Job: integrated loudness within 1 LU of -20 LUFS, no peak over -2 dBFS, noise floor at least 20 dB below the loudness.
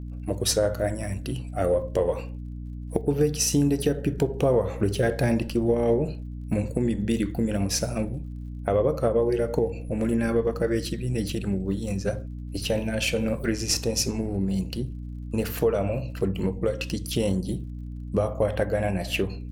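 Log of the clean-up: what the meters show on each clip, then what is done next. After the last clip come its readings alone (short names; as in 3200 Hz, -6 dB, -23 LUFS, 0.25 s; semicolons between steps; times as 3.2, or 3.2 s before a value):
ticks 41/s; hum 60 Hz; harmonics up to 300 Hz; hum level -33 dBFS; loudness -26.0 LUFS; peak -6.5 dBFS; loudness target -20.0 LUFS
-> de-click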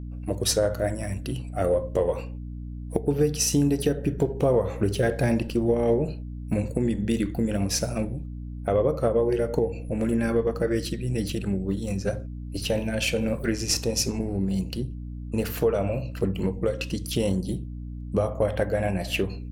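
ticks 1.0/s; hum 60 Hz; harmonics up to 300 Hz; hum level -33 dBFS
-> de-hum 60 Hz, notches 5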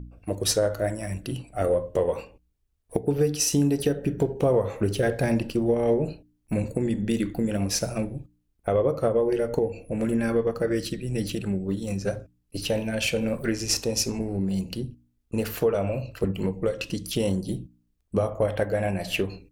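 hum none; loudness -26.5 LUFS; peak -6.5 dBFS; loudness target -20.0 LUFS
-> gain +6.5 dB; limiter -2 dBFS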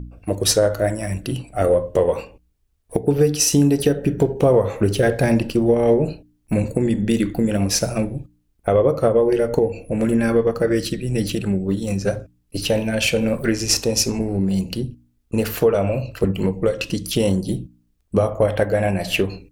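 loudness -20.0 LUFS; peak -2.0 dBFS; noise floor -64 dBFS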